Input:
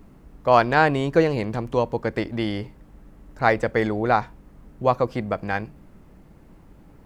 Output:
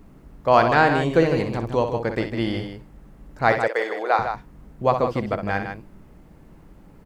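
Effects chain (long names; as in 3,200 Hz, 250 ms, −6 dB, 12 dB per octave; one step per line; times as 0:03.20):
0:03.52–0:04.19: high-pass filter 440 Hz 24 dB per octave
loudspeakers that aren't time-aligned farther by 21 metres −8 dB, 53 metres −8 dB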